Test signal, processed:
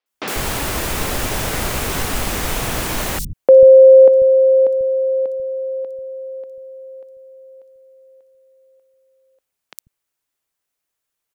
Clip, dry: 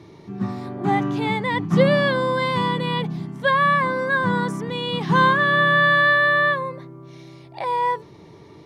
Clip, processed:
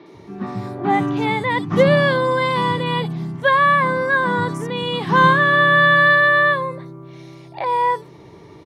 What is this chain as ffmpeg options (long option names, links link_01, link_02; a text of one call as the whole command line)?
ffmpeg -i in.wav -filter_complex "[0:a]acrossover=split=190|4500[link_01][link_02][link_03];[link_03]adelay=60[link_04];[link_01]adelay=140[link_05];[link_05][link_02][link_04]amix=inputs=3:normalize=0,volume=3.5dB" out.wav